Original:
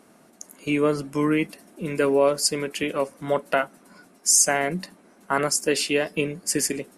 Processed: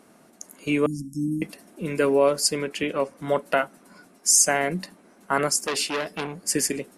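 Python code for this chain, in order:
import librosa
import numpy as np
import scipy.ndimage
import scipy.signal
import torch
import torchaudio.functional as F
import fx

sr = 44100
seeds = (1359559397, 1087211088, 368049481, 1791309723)

y = fx.cheby1_bandstop(x, sr, low_hz=290.0, high_hz=5400.0, order=5, at=(0.86, 1.42))
y = fx.high_shelf(y, sr, hz=fx.line((2.56, 12000.0), (3.17, 7300.0)), db=-12.0, at=(2.56, 3.17), fade=0.02)
y = fx.transformer_sat(y, sr, knee_hz=2700.0, at=(5.62, 6.41))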